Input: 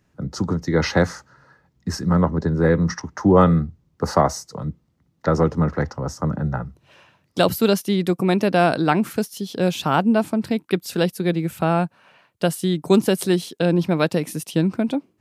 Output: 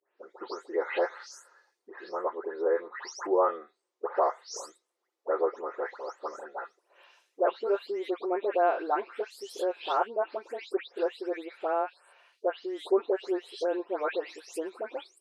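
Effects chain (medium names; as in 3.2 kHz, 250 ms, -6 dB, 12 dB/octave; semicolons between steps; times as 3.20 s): delay that grows with frequency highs late, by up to 267 ms; low-pass that closes with the level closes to 1.2 kHz, closed at -15 dBFS; elliptic high-pass 390 Hz, stop band 60 dB; trim -5 dB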